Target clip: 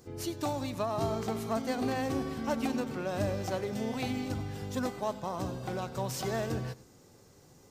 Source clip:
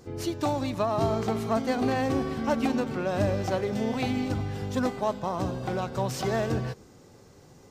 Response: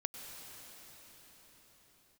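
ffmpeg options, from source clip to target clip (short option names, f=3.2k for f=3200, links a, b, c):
-filter_complex "[0:a]highshelf=f=6.6k:g=9.5[a];[1:a]atrim=start_sample=2205,atrim=end_sample=4410[b];[a][b]afir=irnorm=-1:irlink=0,volume=-3.5dB"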